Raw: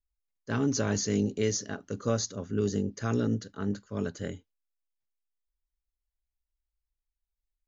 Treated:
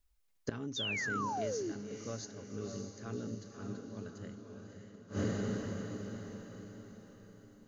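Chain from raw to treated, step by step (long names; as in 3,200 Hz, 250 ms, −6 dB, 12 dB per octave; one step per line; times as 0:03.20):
feedback delay with all-pass diffusion 563 ms, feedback 46%, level −4 dB
sound drawn into the spectrogram fall, 0:00.76–0:01.72, 300–3,800 Hz −23 dBFS
gate with flip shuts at −31 dBFS, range −24 dB
level +10 dB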